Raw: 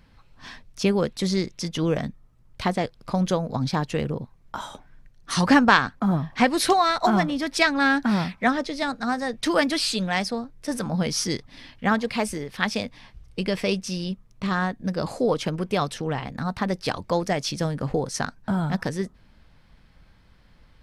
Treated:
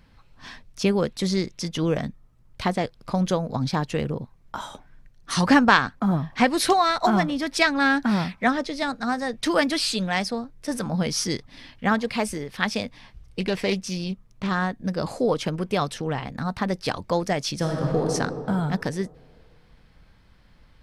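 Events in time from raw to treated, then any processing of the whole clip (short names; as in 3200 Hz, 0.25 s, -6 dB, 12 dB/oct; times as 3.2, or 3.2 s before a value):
13.4–14.49 Doppler distortion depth 0.21 ms
17.55–18.1 reverb throw, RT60 2.3 s, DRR 0 dB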